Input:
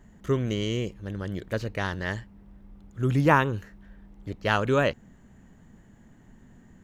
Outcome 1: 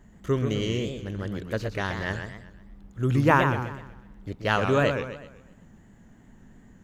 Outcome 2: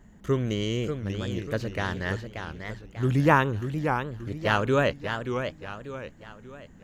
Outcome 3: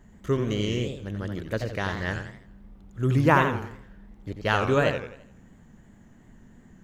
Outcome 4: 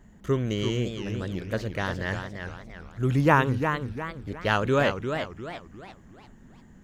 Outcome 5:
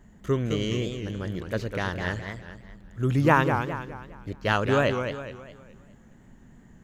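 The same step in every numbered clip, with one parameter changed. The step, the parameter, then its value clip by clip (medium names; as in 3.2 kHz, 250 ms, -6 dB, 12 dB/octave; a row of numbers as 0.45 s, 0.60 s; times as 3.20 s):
modulated delay, time: 125 ms, 586 ms, 84 ms, 346 ms, 207 ms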